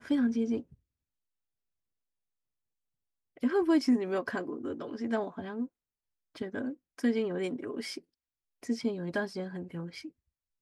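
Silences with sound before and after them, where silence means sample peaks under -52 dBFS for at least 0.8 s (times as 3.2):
0.74–3.37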